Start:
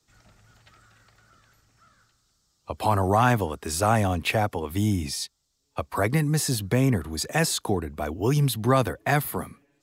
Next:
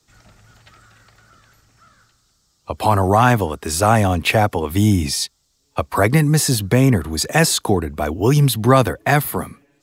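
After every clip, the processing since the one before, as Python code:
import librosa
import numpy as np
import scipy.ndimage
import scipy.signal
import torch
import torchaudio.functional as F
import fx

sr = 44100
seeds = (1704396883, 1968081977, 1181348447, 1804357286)

y = fx.rider(x, sr, range_db=10, speed_s=2.0)
y = y * librosa.db_to_amplitude(7.5)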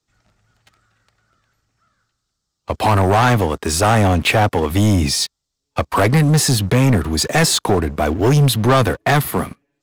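y = fx.high_shelf(x, sr, hz=10000.0, db=-8.5)
y = fx.leveller(y, sr, passes=3)
y = y * librosa.db_to_amplitude(-6.0)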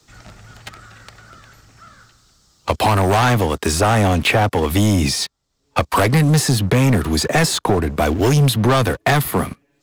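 y = fx.band_squash(x, sr, depth_pct=70)
y = y * librosa.db_to_amplitude(-1.0)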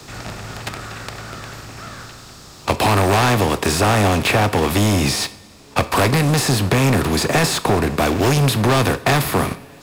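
y = fx.bin_compress(x, sr, power=0.6)
y = fx.rev_double_slope(y, sr, seeds[0], early_s=0.46, late_s=3.1, knee_db=-19, drr_db=11.5)
y = y * librosa.db_to_amplitude(-4.0)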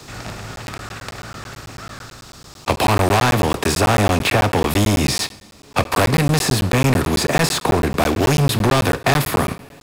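y = fx.buffer_crackle(x, sr, first_s=0.56, period_s=0.11, block=512, kind='zero')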